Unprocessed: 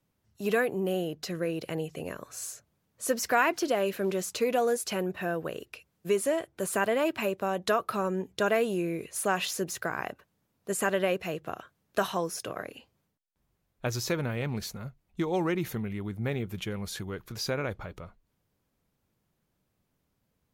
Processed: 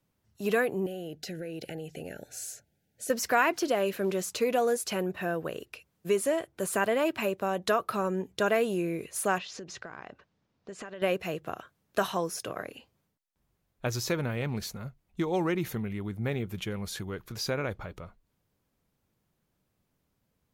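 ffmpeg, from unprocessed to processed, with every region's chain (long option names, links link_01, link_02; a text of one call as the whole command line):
ffmpeg -i in.wav -filter_complex "[0:a]asettb=1/sr,asplit=3[link_01][link_02][link_03];[link_01]atrim=end=0.864[link_04];[link_02]atrim=start=0.86:end=3.1,asetpts=PTS-STARTPTS,afade=type=in:duration=0.004:curve=qsin,afade=type=out:start_time=2.236:duration=0.004:curve=qsin,acompressor=threshold=-34dB:ratio=6:attack=3.2:release=140:knee=1:detection=peak,asuperstop=centerf=1100:order=20:qfactor=2.2[link_05];[link_03]atrim=start=3.096[link_06];[link_04][link_05]acrossfade=duration=0.004:curve1=hsin:curve2=qsin[link_07];[link_07][link_06]acrossfade=duration=0.004:curve1=qsin:curve2=hsin,asettb=1/sr,asplit=3[link_08][link_09][link_10];[link_08]atrim=end=9.384[link_11];[link_09]atrim=start=9.38:end=11.02,asetpts=PTS-STARTPTS,afade=type=in:duration=0.004:curve=qsin,afade=type=out:start_time=1.636:duration=0.004:curve=qsin,lowpass=frequency=5800:width=0.5412,lowpass=frequency=5800:width=1.3066,acompressor=threshold=-38dB:ratio=8:attack=3.2:release=140:knee=1:detection=peak[link_12];[link_10]atrim=start=11.016[link_13];[link_11][link_12]acrossfade=duration=0.004:curve1=hsin:curve2=qsin[link_14];[link_14][link_13]acrossfade=duration=0.004:curve1=qsin:curve2=hsin" out.wav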